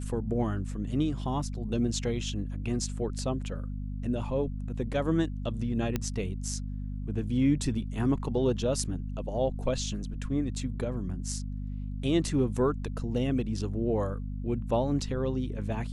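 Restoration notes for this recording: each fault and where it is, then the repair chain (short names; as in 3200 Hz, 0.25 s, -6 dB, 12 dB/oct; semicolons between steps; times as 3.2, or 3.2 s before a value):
hum 50 Hz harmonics 5 -35 dBFS
5.96 pop -15 dBFS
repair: de-click; de-hum 50 Hz, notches 5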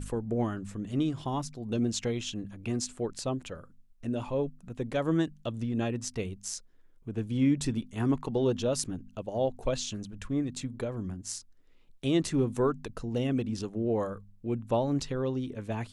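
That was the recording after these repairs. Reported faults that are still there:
none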